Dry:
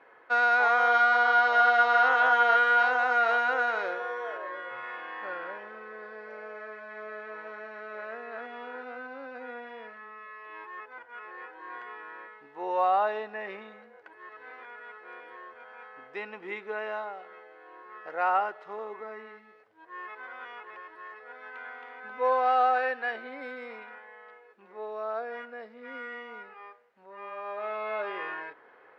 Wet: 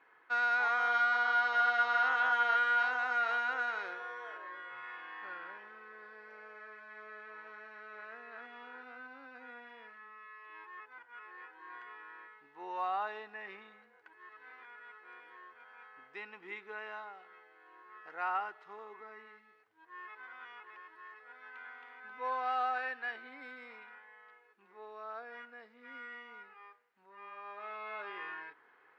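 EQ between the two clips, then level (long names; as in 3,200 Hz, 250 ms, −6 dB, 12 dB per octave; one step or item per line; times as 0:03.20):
parametric band 220 Hz −3 dB 0.21 octaves
low-shelf EQ 380 Hz −4.5 dB
parametric band 570 Hz −11.5 dB 0.7 octaves
−5.5 dB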